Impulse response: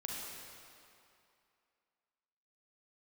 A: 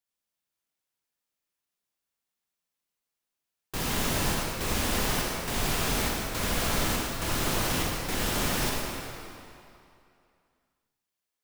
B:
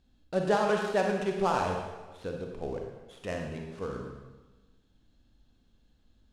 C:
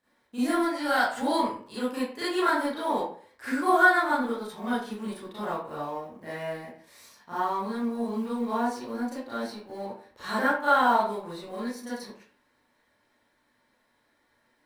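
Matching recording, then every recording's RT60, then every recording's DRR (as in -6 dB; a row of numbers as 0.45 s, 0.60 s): A; 2.6 s, 1.2 s, 0.50 s; -3.0 dB, 1.5 dB, -11.5 dB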